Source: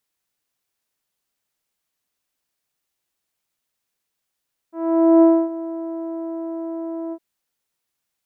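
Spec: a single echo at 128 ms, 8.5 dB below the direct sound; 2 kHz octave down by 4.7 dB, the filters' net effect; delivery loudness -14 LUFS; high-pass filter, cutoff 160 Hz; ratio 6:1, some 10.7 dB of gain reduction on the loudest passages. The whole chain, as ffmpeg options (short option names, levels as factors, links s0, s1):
-af "highpass=160,equalizer=f=2000:t=o:g=-6,acompressor=threshold=0.0891:ratio=6,aecho=1:1:128:0.376,volume=4.47"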